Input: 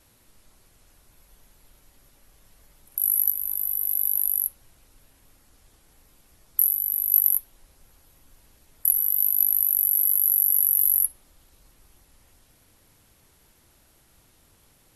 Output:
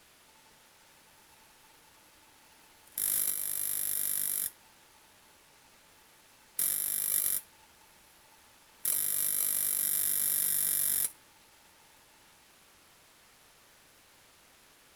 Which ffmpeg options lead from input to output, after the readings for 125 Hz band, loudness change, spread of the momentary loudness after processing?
can't be measured, −8.5 dB, 7 LU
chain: -filter_complex "[0:a]asplit=2[link_01][link_02];[link_02]highpass=frequency=720:poles=1,volume=18dB,asoftclip=type=tanh:threshold=-3.5dB[link_03];[link_01][link_03]amix=inputs=2:normalize=0,lowpass=frequency=3500:poles=1,volume=-6dB,aeval=exprs='val(0)*sgn(sin(2*PI*880*n/s))':channel_layout=same,volume=-6.5dB"

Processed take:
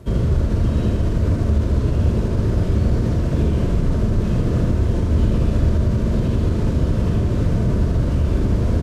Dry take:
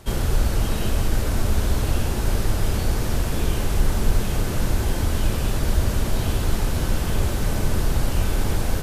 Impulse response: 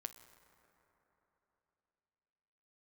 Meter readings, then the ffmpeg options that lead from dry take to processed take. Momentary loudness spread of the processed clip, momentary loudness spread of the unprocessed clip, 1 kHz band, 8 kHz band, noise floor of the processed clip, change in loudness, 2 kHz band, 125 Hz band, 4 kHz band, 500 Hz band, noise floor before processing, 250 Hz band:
1 LU, 1 LU, −3.0 dB, below −10 dB, −21 dBFS, +5.0 dB, −5.5 dB, +6.5 dB, −8.0 dB, +4.0 dB, −25 dBFS, +7.5 dB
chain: -filter_complex "[0:a]highpass=53,acrossover=split=7900[link_01][link_02];[link_02]acompressor=threshold=-57dB:ratio=4:attack=1:release=60[link_03];[link_01][link_03]amix=inputs=2:normalize=0,tiltshelf=frequency=850:gain=8.5,alimiter=limit=-12dB:level=0:latency=1,asuperstop=centerf=800:order=4:qfactor=5.7,asplit=2[link_04][link_05];[link_05]adelay=41,volume=-10.5dB[link_06];[link_04][link_06]amix=inputs=2:normalize=0,aecho=1:1:79:0.631"

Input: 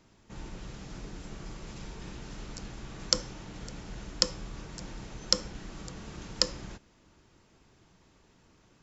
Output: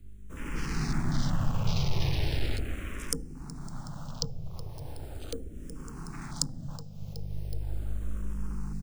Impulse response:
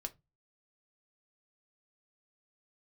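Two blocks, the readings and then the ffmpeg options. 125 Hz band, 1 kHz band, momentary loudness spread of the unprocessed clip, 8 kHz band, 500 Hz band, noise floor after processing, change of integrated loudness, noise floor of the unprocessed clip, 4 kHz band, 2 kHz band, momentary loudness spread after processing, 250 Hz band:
+12.0 dB, +3.5 dB, 15 LU, can't be measured, −0.5 dB, −43 dBFS, −0.5 dB, −64 dBFS, −7.0 dB, +3.5 dB, 13 LU, +6.5 dB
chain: -filter_complex "[0:a]equalizer=frequency=390:width=1.2:gain=-4.5,aeval=exprs='val(0)+0.00447*(sin(2*PI*50*n/s)+sin(2*PI*2*50*n/s)/2+sin(2*PI*3*50*n/s)/3+sin(2*PI*4*50*n/s)/4+sin(2*PI*5*50*n/s)/5)':channel_layout=same,asplit=2[link_01][link_02];[link_02]aecho=0:1:371|742|1113:0.168|0.0621|0.023[link_03];[link_01][link_03]amix=inputs=2:normalize=0,dynaudnorm=framelen=140:gausssize=9:maxgain=15.5dB,acrusher=samples=3:mix=1:aa=0.000001,acrossover=split=490[link_04][link_05];[link_05]acompressor=threshold=-41dB:ratio=4[link_06];[link_04][link_06]amix=inputs=2:normalize=0,aeval=exprs='0.2*(cos(1*acos(clip(val(0)/0.2,-1,1)))-cos(1*PI/2))+0.0224*(cos(5*acos(clip(val(0)/0.2,-1,1)))-cos(5*PI/2))':channel_layout=same,afwtdn=0.00562,highshelf=frequency=3600:gain=11.5,afreqshift=-47,asplit=2[link_07][link_08];[link_08]afreqshift=-0.38[link_09];[link_07][link_09]amix=inputs=2:normalize=1,volume=1.5dB"

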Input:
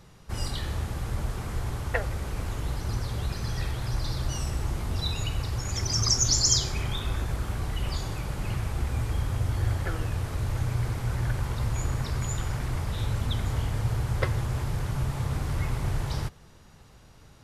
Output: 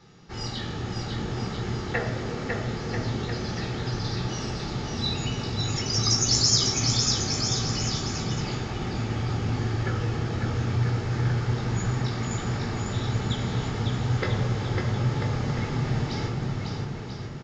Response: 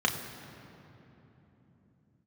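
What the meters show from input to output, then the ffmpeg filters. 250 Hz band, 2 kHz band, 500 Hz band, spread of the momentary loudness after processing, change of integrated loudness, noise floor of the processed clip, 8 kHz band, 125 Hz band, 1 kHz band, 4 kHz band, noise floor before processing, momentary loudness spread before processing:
+7.5 dB, +3.5 dB, +6.0 dB, 9 LU, +2.5 dB, −34 dBFS, +1.0 dB, +2.0 dB, +4.0 dB, +5.0 dB, −52 dBFS, 7 LU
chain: -filter_complex "[0:a]aecho=1:1:550|990|1342|1624|1849:0.631|0.398|0.251|0.158|0.1[link_01];[1:a]atrim=start_sample=2205,asetrate=74970,aresample=44100[link_02];[link_01][link_02]afir=irnorm=-1:irlink=0,aresample=16000,aresample=44100,volume=-4.5dB"

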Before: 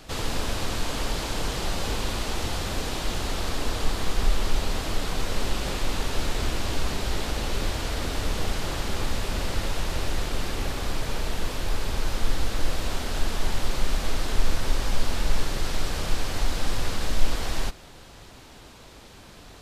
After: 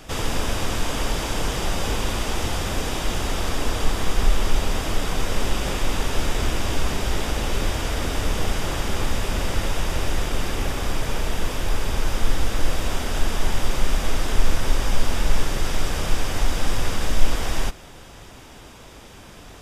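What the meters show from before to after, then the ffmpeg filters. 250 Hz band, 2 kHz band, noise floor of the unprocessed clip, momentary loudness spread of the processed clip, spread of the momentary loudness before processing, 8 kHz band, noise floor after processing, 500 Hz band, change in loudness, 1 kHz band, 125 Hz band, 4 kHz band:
+4.0 dB, +4.0 dB, −47 dBFS, 2 LU, 3 LU, +4.0 dB, −43 dBFS, +4.0 dB, +3.5 dB, +4.0 dB, +4.0 dB, +2.5 dB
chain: -af "bandreject=frequency=4200:width=5.7,volume=4dB"

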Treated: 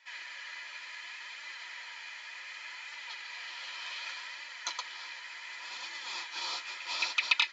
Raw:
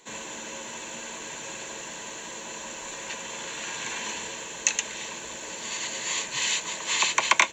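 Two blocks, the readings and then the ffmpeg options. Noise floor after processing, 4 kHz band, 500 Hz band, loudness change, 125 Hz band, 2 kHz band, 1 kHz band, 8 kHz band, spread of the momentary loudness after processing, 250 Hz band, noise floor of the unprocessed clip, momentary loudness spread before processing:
−47 dBFS, −5.5 dB, −19.0 dB, −8.0 dB, below −35 dB, −6.0 dB, −11.5 dB, −19.5 dB, 11 LU, below −20 dB, −39 dBFS, 12 LU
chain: -af "afftfilt=real='real(if(lt(b,272),68*(eq(floor(b/68),0)*3+eq(floor(b/68),1)*0+eq(floor(b/68),2)*1+eq(floor(b/68),3)*2)+mod(b,68),b),0)':imag='imag(if(lt(b,272),68*(eq(floor(b/68),0)*3+eq(floor(b/68),1)*0+eq(floor(b/68),2)*1+eq(floor(b/68),3)*2)+mod(b,68),b),0)':win_size=2048:overlap=0.75,highpass=frequency=430:width=0.5412,highpass=frequency=430:width=1.3066,equalizer=frequency=450:width_type=q:width=4:gain=-8,equalizer=frequency=990:width_type=q:width=4:gain=8,equalizer=frequency=3700:width_type=q:width=4:gain=-7,lowpass=frequency=4300:width=0.5412,lowpass=frequency=4300:width=1.3066,flanger=delay=3.4:depth=9.8:regen=-12:speed=0.67:shape=sinusoidal"

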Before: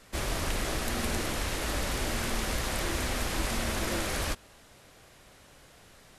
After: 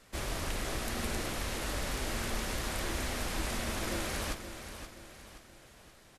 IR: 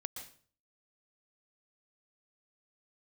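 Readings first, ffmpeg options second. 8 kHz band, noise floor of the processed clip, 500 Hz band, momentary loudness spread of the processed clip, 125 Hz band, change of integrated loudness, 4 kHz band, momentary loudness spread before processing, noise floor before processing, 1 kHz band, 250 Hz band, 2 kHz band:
−4.0 dB, −58 dBFS, −4.0 dB, 16 LU, −4.0 dB, −4.5 dB, −4.0 dB, 1 LU, −56 dBFS, −4.0 dB, −4.0 dB, −4.0 dB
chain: -af "aecho=1:1:525|1050|1575|2100|2625:0.316|0.139|0.0612|0.0269|0.0119,volume=-4.5dB"

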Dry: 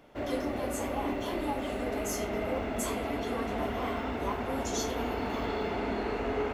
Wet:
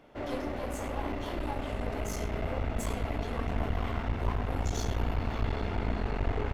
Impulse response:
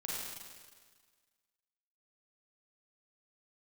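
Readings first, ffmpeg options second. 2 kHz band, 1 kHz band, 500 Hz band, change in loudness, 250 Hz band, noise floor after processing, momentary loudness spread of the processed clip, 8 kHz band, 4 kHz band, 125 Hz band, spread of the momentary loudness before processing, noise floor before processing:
−2.5 dB, −3.0 dB, −4.5 dB, −1.0 dB, −3.0 dB, −36 dBFS, 3 LU, −6.0 dB, −3.5 dB, +8.5 dB, 1 LU, −35 dBFS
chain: -filter_complex "[0:a]asubboost=boost=6.5:cutoff=130,asplit=2[link_01][link_02];[link_02]aecho=0:1:99:0.2[link_03];[link_01][link_03]amix=inputs=2:normalize=0,aeval=exprs='clip(val(0),-1,0.0141)':channel_layout=same,highshelf=frequency=6100:gain=-7"

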